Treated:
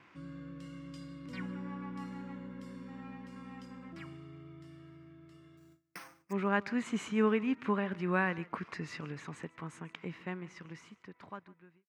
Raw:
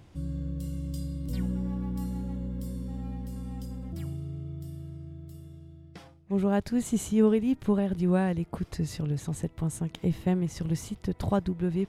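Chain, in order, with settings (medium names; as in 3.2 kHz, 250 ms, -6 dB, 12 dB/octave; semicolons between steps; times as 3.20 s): fade out at the end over 3.29 s; Chebyshev band-pass 240–5100 Hz, order 2; high-order bell 1.6 kHz +14 dB; 5.57–6.33 s: careless resampling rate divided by 6×, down none, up hold; delay 149 ms -21 dB; gate with hold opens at -45 dBFS; trim -5.5 dB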